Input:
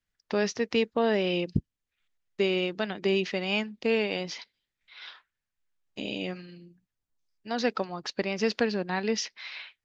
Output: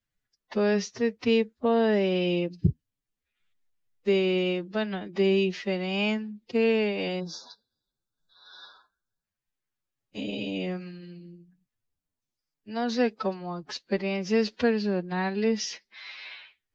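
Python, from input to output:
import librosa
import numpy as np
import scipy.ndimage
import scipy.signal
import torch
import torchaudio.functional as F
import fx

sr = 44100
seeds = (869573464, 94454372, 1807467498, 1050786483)

y = fx.low_shelf(x, sr, hz=470.0, db=6.0)
y = fx.stretch_vocoder(y, sr, factor=1.7)
y = fx.spec_erase(y, sr, start_s=7.2, length_s=2.03, low_hz=1700.0, high_hz=3400.0)
y = y * librosa.db_to_amplitude(-1.5)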